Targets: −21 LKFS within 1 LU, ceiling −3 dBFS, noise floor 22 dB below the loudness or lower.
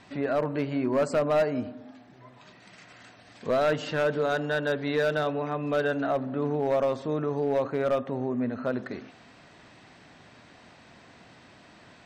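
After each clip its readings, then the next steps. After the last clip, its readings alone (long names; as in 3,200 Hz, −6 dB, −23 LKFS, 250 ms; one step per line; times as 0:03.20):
share of clipped samples 0.8%; peaks flattened at −18.5 dBFS; integrated loudness −27.5 LKFS; sample peak −18.5 dBFS; target loudness −21.0 LKFS
→ clipped peaks rebuilt −18.5 dBFS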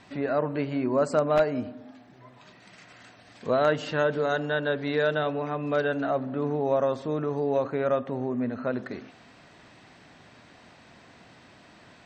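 share of clipped samples 0.0%; integrated loudness −27.0 LKFS; sample peak −9.5 dBFS; target loudness −21.0 LKFS
→ level +6 dB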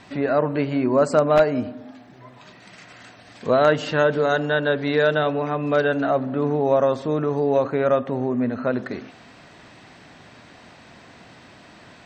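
integrated loudness −21.0 LKFS; sample peak −3.5 dBFS; background noise floor −48 dBFS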